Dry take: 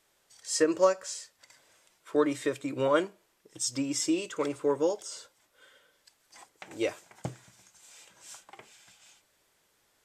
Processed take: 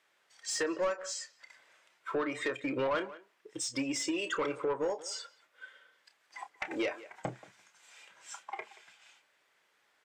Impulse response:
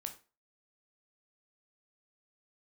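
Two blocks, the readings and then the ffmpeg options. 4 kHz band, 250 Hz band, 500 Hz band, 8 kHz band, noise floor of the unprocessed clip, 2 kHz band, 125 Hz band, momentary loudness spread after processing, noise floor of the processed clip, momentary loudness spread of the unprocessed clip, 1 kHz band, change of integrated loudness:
−1.5 dB, −5.5 dB, −6.0 dB, −4.5 dB, −71 dBFS, +2.0 dB, −6.0 dB, 20 LU, −73 dBFS, 20 LU, −2.5 dB, −5.0 dB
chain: -filter_complex "[0:a]highpass=120,afftdn=noise_reduction=15:noise_floor=-43,equalizer=frequency=2000:width_type=o:width=1.6:gain=6,acompressor=threshold=-37dB:ratio=6,asplit=2[link_01][link_02];[link_02]adelay=180,highpass=300,lowpass=3400,asoftclip=type=hard:threshold=-36dB,volume=-19dB[link_03];[link_01][link_03]amix=inputs=2:normalize=0,asplit=2[link_04][link_05];[link_05]highpass=frequency=720:poles=1,volume=10dB,asoftclip=type=tanh:threshold=-26dB[link_06];[link_04][link_06]amix=inputs=2:normalize=0,lowpass=frequency=2400:poles=1,volume=-6dB,asplit=2[link_07][link_08];[link_08]adelay=30,volume=-11.5dB[link_09];[link_07][link_09]amix=inputs=2:normalize=0,asoftclip=type=tanh:threshold=-33.5dB,volume=8.5dB"

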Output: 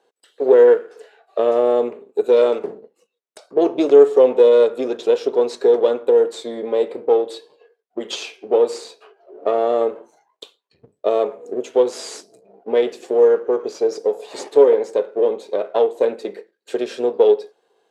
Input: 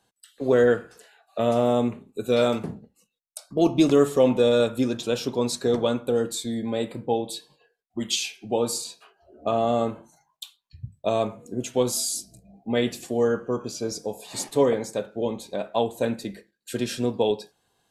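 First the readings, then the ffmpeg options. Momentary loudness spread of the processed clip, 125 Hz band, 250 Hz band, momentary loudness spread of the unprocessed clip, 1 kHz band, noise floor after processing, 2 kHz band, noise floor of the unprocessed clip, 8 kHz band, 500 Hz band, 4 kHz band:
16 LU, below −15 dB, −1.5 dB, 17 LU, +3.5 dB, −72 dBFS, −0.5 dB, −76 dBFS, −8.0 dB, +9.0 dB, −3.0 dB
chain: -filter_complex "[0:a]aeval=exprs='if(lt(val(0),0),0.447*val(0),val(0))':channel_layout=same,acrossover=split=9500[link_01][link_02];[link_02]acompressor=threshold=-52dB:ratio=4:attack=1:release=60[link_03];[link_01][link_03]amix=inputs=2:normalize=0,aemphasis=mode=reproduction:type=50fm,asplit=2[link_04][link_05];[link_05]acompressor=threshold=-30dB:ratio=6,volume=2dB[link_06];[link_04][link_06]amix=inputs=2:normalize=0,highpass=frequency=430:width_type=q:width=4.3,volume=-1.5dB"

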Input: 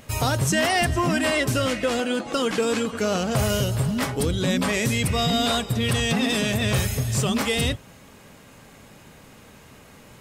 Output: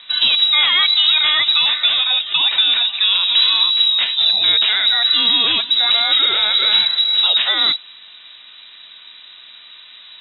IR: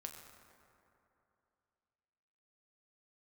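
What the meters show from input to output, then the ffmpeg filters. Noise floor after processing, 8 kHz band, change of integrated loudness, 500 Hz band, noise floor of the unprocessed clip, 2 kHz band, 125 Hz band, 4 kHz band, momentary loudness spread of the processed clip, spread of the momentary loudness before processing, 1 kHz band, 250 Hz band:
−42 dBFS, below −40 dB, +10.5 dB, −13.0 dB, −49 dBFS, +6.0 dB, below −25 dB, +18.5 dB, 3 LU, 4 LU, 0.0 dB, −16.5 dB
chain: -af "lowpass=frequency=3400:width_type=q:width=0.5098,lowpass=frequency=3400:width_type=q:width=0.6013,lowpass=frequency=3400:width_type=q:width=0.9,lowpass=frequency=3400:width_type=q:width=2.563,afreqshift=-4000,highshelf=frequency=2600:gain=8.5,volume=2.5dB"

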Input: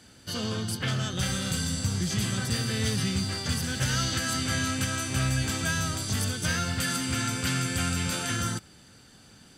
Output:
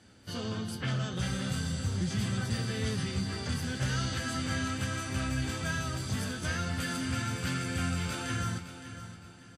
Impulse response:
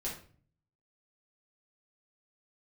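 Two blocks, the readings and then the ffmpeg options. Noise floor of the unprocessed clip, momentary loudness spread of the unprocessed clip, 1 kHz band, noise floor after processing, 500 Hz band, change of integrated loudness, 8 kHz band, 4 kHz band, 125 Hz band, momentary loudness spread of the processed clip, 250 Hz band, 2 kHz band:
−54 dBFS, 3 LU, −4.0 dB, −51 dBFS, −3.0 dB, −5.0 dB, −10.0 dB, −7.5 dB, −3.0 dB, 5 LU, −3.0 dB, −4.5 dB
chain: -filter_complex "[0:a]asplit=2[link_01][link_02];[link_02]adelay=816.3,volume=-20dB,highshelf=frequency=4000:gain=-18.4[link_03];[link_01][link_03]amix=inputs=2:normalize=0,asplit=2[link_04][link_05];[link_05]volume=23.5dB,asoftclip=hard,volume=-23.5dB,volume=-10dB[link_06];[link_04][link_06]amix=inputs=2:normalize=0,flanger=delay=9.2:depth=7.4:regen=-49:speed=0.41:shape=triangular,highshelf=frequency=3500:gain=-8.5,asplit=2[link_07][link_08];[link_08]aecho=0:1:565|1130|1695:0.251|0.0854|0.029[link_09];[link_07][link_09]amix=inputs=2:normalize=0,volume=-1.5dB" -ar 44100 -c:a wmav2 -b:a 64k

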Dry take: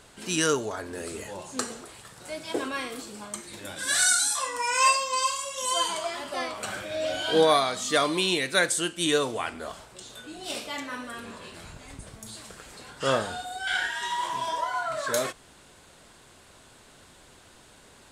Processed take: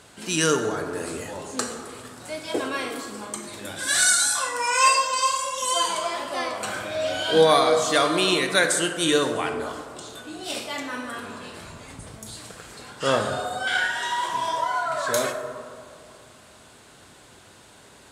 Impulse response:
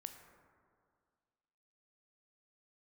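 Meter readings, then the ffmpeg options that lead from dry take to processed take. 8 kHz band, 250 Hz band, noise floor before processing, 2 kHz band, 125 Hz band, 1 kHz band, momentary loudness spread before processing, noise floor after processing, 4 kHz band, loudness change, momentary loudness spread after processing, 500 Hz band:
+3.0 dB, +4.0 dB, −54 dBFS, +3.5 dB, +4.5 dB, +4.0 dB, 21 LU, −51 dBFS, +3.0 dB, +3.5 dB, 20 LU, +4.5 dB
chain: -filter_complex "[0:a]highpass=62[link_01];[1:a]atrim=start_sample=2205,asetrate=37926,aresample=44100[link_02];[link_01][link_02]afir=irnorm=-1:irlink=0,volume=7.5dB"

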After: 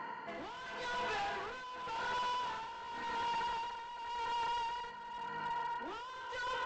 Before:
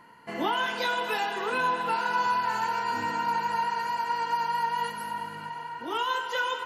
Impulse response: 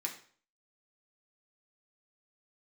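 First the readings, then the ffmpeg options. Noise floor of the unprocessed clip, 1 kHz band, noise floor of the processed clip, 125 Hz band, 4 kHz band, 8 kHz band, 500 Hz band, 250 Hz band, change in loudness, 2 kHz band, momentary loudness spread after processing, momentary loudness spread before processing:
−41 dBFS, −11.0 dB, −47 dBFS, −11.0 dB, −9.5 dB, −10.0 dB, −11.5 dB, −14.0 dB, −11.0 dB, −11.5 dB, 8 LU, 8 LU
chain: -filter_complex "[0:a]asplit=2[link_01][link_02];[link_02]highpass=frequency=720:poles=1,volume=16dB,asoftclip=type=tanh:threshold=-15dB[link_03];[link_01][link_03]amix=inputs=2:normalize=0,lowpass=frequency=1200:poles=1,volume=-6dB,aresample=16000,asoftclip=type=hard:threshold=-28dB,aresample=44100,alimiter=level_in=13.5dB:limit=-24dB:level=0:latency=1,volume=-13.5dB,tremolo=f=0.9:d=0.7,volume=3.5dB"

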